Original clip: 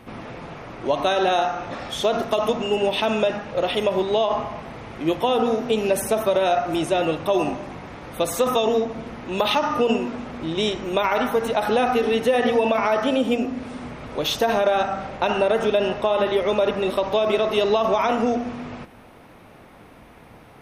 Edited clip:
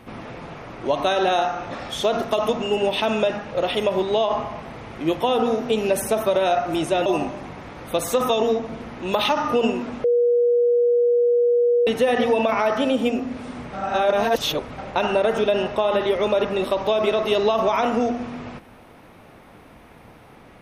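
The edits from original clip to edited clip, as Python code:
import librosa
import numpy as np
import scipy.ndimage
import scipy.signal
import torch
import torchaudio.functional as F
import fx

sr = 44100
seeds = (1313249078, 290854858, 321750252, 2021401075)

y = fx.edit(x, sr, fx.cut(start_s=7.06, length_s=0.26),
    fx.bleep(start_s=10.3, length_s=1.83, hz=480.0, db=-14.5),
    fx.reverse_span(start_s=13.99, length_s=1.05), tone=tone)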